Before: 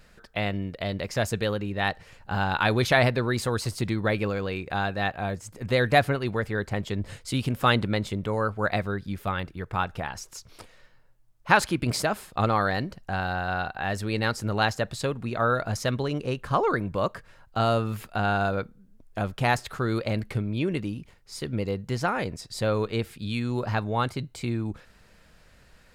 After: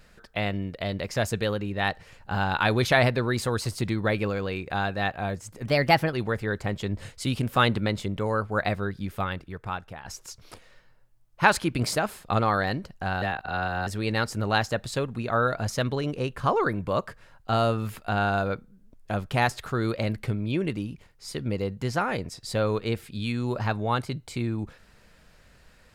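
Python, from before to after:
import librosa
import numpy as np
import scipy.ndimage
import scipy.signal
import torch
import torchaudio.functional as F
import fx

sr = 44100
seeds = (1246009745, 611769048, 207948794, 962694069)

y = fx.edit(x, sr, fx.speed_span(start_s=5.65, length_s=0.55, speed=1.15),
    fx.fade_out_to(start_s=9.25, length_s=0.87, floor_db=-11.0),
    fx.reverse_span(start_s=13.29, length_s=0.65), tone=tone)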